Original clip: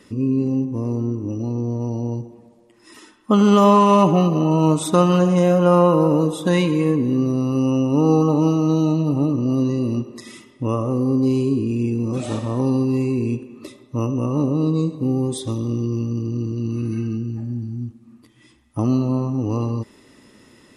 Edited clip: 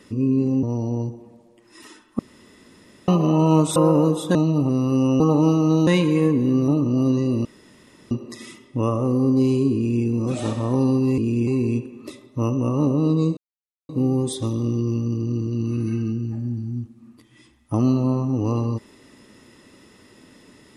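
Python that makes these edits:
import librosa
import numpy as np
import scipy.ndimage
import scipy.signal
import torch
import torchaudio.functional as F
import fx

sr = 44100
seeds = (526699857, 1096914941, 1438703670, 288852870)

y = fx.edit(x, sr, fx.cut(start_s=0.63, length_s=1.12),
    fx.room_tone_fill(start_s=3.31, length_s=0.89),
    fx.cut(start_s=4.88, length_s=1.04),
    fx.swap(start_s=6.51, length_s=0.81, other_s=8.86, other_length_s=0.34),
    fx.cut(start_s=7.83, length_s=0.36),
    fx.insert_room_tone(at_s=9.97, length_s=0.66),
    fx.duplicate(start_s=11.61, length_s=0.29, to_s=13.04),
    fx.insert_silence(at_s=14.94, length_s=0.52), tone=tone)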